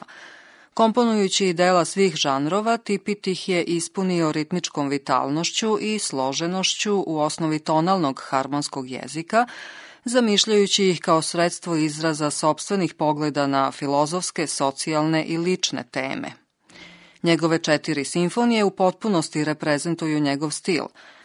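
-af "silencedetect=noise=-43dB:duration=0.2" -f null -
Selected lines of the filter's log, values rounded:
silence_start: 16.35
silence_end: 16.70 | silence_duration: 0.34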